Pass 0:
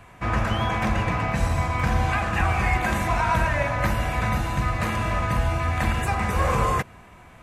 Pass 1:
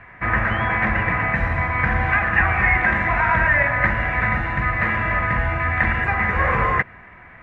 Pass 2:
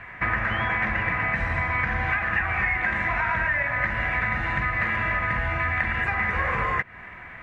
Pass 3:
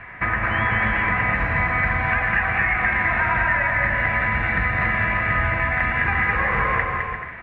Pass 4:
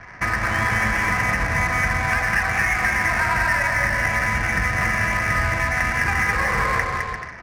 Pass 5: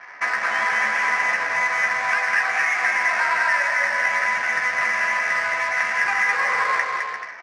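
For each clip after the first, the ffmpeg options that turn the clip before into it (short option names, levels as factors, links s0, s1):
-af "lowpass=f=1900:t=q:w=5.1"
-af "highshelf=f=2400:g=10,acompressor=threshold=0.0794:ratio=6"
-filter_complex "[0:a]lowpass=3100,asplit=2[s0][s1];[s1]aecho=0:1:210|346.5|435.2|492.9|530.4:0.631|0.398|0.251|0.158|0.1[s2];[s0][s2]amix=inputs=2:normalize=0,volume=1.33"
-af "adynamicsmooth=sensitivity=5:basefreq=1100"
-filter_complex "[0:a]highpass=630,lowpass=6300,asplit=2[s0][s1];[s1]adelay=14,volume=0.501[s2];[s0][s2]amix=inputs=2:normalize=0"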